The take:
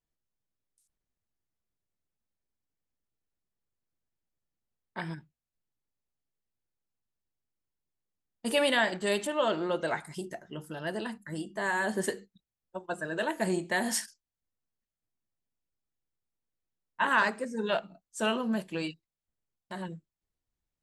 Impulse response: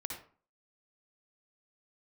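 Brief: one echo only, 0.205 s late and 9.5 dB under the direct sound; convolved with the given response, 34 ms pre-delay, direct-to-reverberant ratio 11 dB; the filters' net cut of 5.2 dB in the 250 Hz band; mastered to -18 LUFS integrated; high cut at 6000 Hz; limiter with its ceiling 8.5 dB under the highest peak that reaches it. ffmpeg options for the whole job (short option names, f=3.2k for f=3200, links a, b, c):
-filter_complex "[0:a]lowpass=6k,equalizer=f=250:t=o:g=-7,alimiter=limit=-21.5dB:level=0:latency=1,aecho=1:1:205:0.335,asplit=2[a][b];[1:a]atrim=start_sample=2205,adelay=34[c];[b][c]afir=irnorm=-1:irlink=0,volume=-11dB[d];[a][d]amix=inputs=2:normalize=0,volume=16.5dB"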